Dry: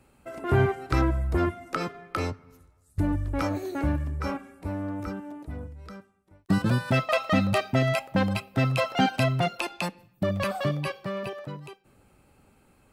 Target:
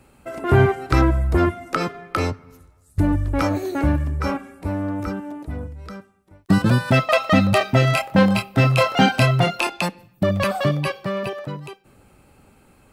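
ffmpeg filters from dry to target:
-filter_complex "[0:a]asettb=1/sr,asplit=3[a][b][c];[a]atrim=end=7.584[d];[b]atrim=start=7.58:end=9.7,asetpts=PTS-STARTPTS,afade=t=in:d=0.004:c=qsin,afade=t=out:st=2.116:d=0.004:c=qsin,asplit=2[e][f];[f]adelay=25,volume=-4dB[g];[e][g]amix=inputs=2:normalize=0,atrim=end_sample=93492[h];[c]atrim=start=9.696[i];[d][h]acrossfade=d=0.004:c1=hsin:c2=qsin[j];[j][i]acrossfade=d=0.004:c1=qsin:c2=hsin,volume=7dB"

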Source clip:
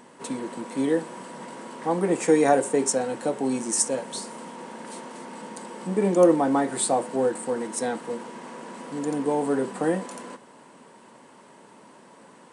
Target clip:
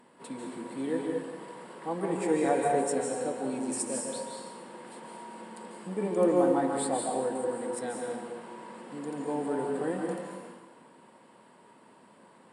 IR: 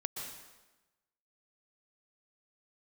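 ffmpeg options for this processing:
-filter_complex "[0:a]equalizer=f=6.2k:t=o:w=0.27:g=-14.5[a];[1:a]atrim=start_sample=2205,asetrate=37926,aresample=44100[b];[a][b]afir=irnorm=-1:irlink=0,volume=-8dB"

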